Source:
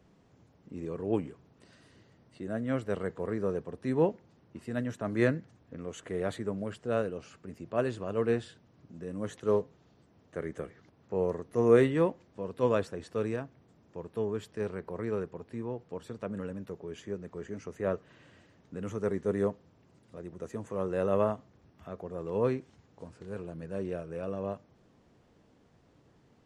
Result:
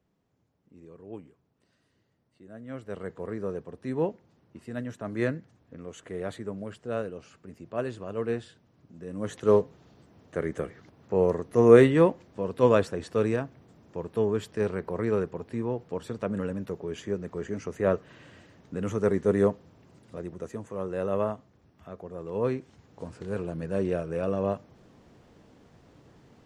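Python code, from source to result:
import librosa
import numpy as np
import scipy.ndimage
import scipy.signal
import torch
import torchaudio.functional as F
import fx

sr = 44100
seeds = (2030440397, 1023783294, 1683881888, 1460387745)

y = fx.gain(x, sr, db=fx.line((2.48, -12.0), (3.12, -1.5), (8.97, -1.5), (9.43, 6.5), (20.2, 6.5), (20.68, -0.5), (22.33, -0.5), (23.1, 7.5)))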